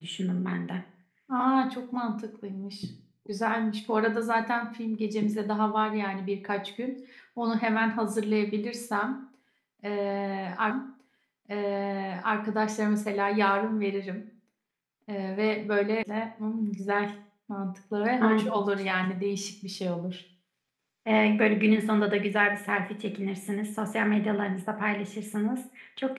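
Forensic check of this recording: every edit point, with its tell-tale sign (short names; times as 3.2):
10.71 repeat of the last 1.66 s
16.03 sound cut off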